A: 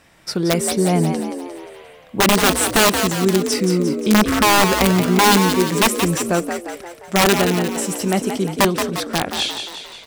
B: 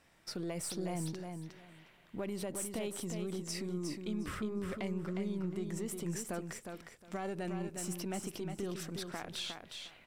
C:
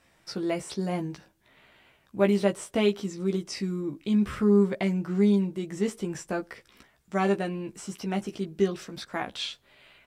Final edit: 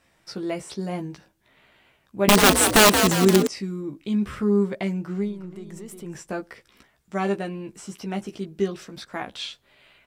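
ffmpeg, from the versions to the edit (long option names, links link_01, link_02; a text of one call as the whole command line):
ffmpeg -i take0.wav -i take1.wav -i take2.wav -filter_complex "[2:a]asplit=3[link_01][link_02][link_03];[link_01]atrim=end=2.282[link_04];[0:a]atrim=start=2.278:end=3.472[link_05];[link_02]atrim=start=3.468:end=5.36[link_06];[1:a]atrim=start=5.12:end=6.22[link_07];[link_03]atrim=start=5.98[link_08];[link_04][link_05]acrossfade=duration=0.004:curve1=hsin:curve2=hsin[link_09];[link_09][link_06]acrossfade=duration=0.004:curve1=hsin:curve2=hsin[link_10];[link_10][link_07]acrossfade=duration=0.24:curve1=tri:curve2=tri[link_11];[link_11][link_08]acrossfade=duration=0.24:curve1=tri:curve2=tri" out.wav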